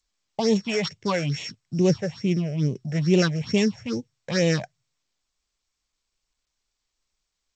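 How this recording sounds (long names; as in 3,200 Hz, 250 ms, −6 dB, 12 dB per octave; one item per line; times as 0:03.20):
a buzz of ramps at a fixed pitch in blocks of 8 samples
phaser sweep stages 6, 2.3 Hz, lowest notch 270–1,400 Hz
G.722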